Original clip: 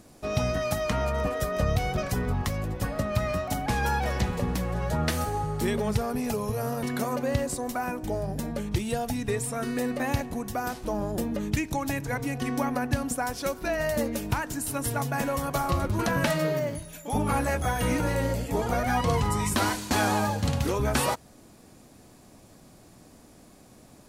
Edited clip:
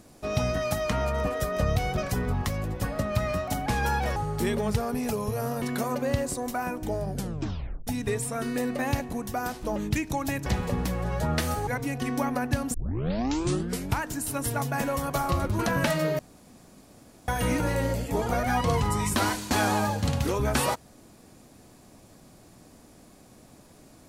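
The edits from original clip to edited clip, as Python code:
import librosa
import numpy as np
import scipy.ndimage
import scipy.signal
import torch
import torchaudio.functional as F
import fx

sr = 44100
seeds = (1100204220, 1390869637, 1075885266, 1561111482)

y = fx.edit(x, sr, fx.move(start_s=4.16, length_s=1.21, to_s=12.07),
    fx.tape_stop(start_s=8.3, length_s=0.78),
    fx.cut(start_s=10.97, length_s=0.4),
    fx.tape_start(start_s=13.14, length_s=1.24),
    fx.room_tone_fill(start_s=16.59, length_s=1.09), tone=tone)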